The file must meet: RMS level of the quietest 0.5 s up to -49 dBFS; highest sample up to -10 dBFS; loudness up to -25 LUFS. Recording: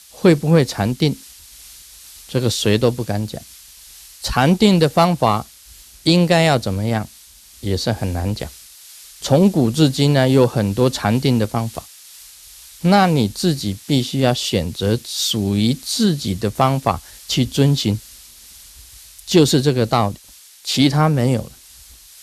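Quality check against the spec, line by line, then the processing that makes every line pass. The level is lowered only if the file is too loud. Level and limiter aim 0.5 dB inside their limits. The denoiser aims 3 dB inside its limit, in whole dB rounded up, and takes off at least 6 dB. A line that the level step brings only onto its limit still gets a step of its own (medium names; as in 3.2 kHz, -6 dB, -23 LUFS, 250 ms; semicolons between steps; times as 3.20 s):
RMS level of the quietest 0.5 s -45 dBFS: fail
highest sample -1.5 dBFS: fail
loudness -17.5 LUFS: fail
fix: trim -8 dB; peak limiter -10.5 dBFS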